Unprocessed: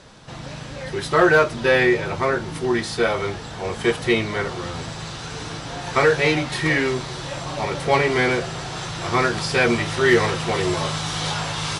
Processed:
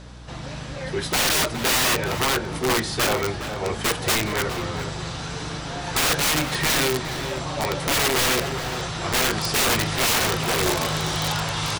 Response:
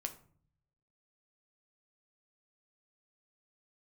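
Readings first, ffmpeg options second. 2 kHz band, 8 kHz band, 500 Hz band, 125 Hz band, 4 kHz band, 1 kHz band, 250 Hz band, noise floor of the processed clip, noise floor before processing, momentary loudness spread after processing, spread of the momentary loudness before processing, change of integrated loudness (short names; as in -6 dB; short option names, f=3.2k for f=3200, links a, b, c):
-3.0 dB, +9.0 dB, -6.0 dB, -1.5 dB, +4.5 dB, -1.5 dB, -4.0 dB, -34 dBFS, -35 dBFS, 11 LU, 14 LU, -1.0 dB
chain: -filter_complex "[0:a]aeval=exprs='(mod(5.96*val(0)+1,2)-1)/5.96':c=same,asplit=2[a][b];[b]adelay=414,volume=-9dB,highshelf=f=4k:g=-9.32[c];[a][c]amix=inputs=2:normalize=0,aeval=exprs='val(0)+0.00891*(sin(2*PI*60*n/s)+sin(2*PI*2*60*n/s)/2+sin(2*PI*3*60*n/s)/3+sin(2*PI*4*60*n/s)/4+sin(2*PI*5*60*n/s)/5)':c=same"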